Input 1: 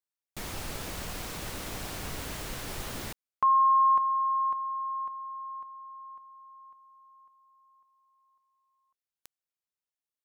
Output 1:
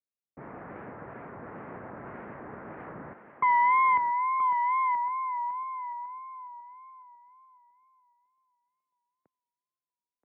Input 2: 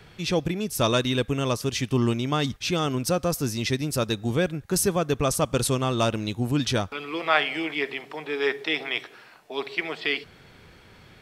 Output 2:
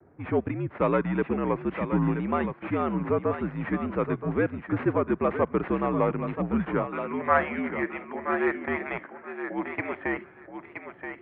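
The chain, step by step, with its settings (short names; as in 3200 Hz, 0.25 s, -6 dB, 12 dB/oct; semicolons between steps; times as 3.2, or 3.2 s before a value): tracing distortion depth 0.35 ms; low-pass opened by the level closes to 550 Hz, open at -24.5 dBFS; on a send: thinning echo 0.975 s, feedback 17%, high-pass 390 Hz, level -7 dB; on the sum: mistuned SSB -68 Hz 200–2100 Hz; wow and flutter 77 cents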